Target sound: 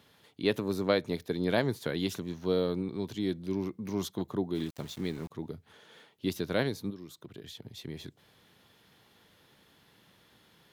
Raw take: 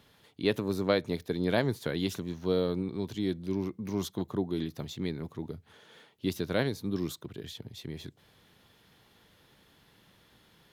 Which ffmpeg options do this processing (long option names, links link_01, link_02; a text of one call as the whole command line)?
ffmpeg -i in.wav -filter_complex "[0:a]highpass=frequency=96:poles=1,asplit=3[link_01][link_02][link_03];[link_01]afade=type=out:start_time=4.54:duration=0.02[link_04];[link_02]aeval=exprs='val(0)*gte(abs(val(0)),0.00531)':channel_layout=same,afade=type=in:start_time=4.54:duration=0.02,afade=type=out:start_time=5.3:duration=0.02[link_05];[link_03]afade=type=in:start_time=5.3:duration=0.02[link_06];[link_04][link_05][link_06]amix=inputs=3:normalize=0,asettb=1/sr,asplit=3[link_07][link_08][link_09];[link_07]atrim=end=6.904[link_10];[link_08]atrim=start=6.9:end=7.65,asetpts=PTS-STARTPTS,afade=type=in:duration=0.004:curve=qsin,afade=type=out:start_time=0.746:duration=0.004:curve=qsin,acompressor=threshold=-41dB:ratio=10[link_11];[link_09]atrim=start=7.646[link_12];[link_10][link_11]acrossfade=duration=0.004:curve1=hsin:curve2=qsin[link_13];[link_13][link_12]acrossfade=duration=0.004:curve1=qsin:curve2=hsin" out.wav